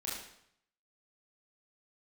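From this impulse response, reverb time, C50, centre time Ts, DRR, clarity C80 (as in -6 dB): 0.70 s, 1.5 dB, 58 ms, -6.5 dB, 5.0 dB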